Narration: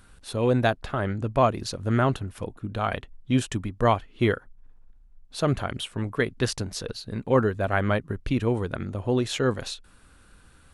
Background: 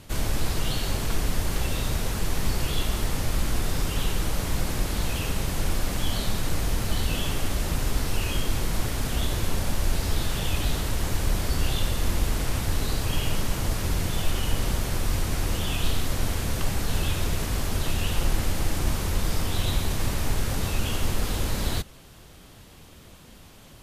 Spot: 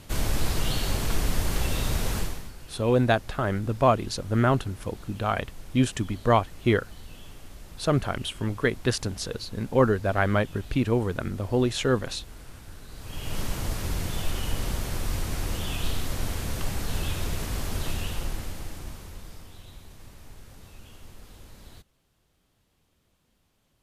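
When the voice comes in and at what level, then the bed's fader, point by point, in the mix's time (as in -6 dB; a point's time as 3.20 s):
2.45 s, +0.5 dB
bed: 2.19 s 0 dB
2.53 s -19 dB
12.88 s -19 dB
13.40 s -3.5 dB
17.90 s -3.5 dB
19.64 s -21.5 dB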